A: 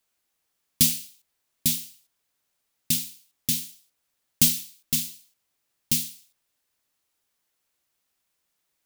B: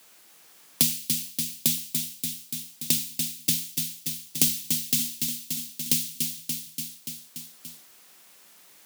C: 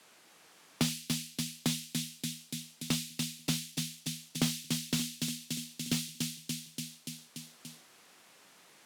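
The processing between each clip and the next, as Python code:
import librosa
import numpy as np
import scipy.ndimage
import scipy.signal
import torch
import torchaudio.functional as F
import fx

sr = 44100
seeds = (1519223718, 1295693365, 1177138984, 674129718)

y1 = scipy.signal.sosfilt(scipy.signal.butter(4, 140.0, 'highpass', fs=sr, output='sos'), x)
y1 = fx.echo_feedback(y1, sr, ms=289, feedback_pct=48, wet_db=-8.0)
y1 = fx.band_squash(y1, sr, depth_pct=70)
y1 = F.gain(torch.from_numpy(y1), 1.5).numpy()
y2 = scipy.signal.sosfilt(scipy.signal.butter(2, 11000.0, 'lowpass', fs=sr, output='sos'), y1)
y2 = fx.high_shelf(y2, sr, hz=4000.0, db=-8.0)
y2 = fx.slew_limit(y2, sr, full_power_hz=140.0)
y2 = F.gain(torch.from_numpy(y2), 1.0).numpy()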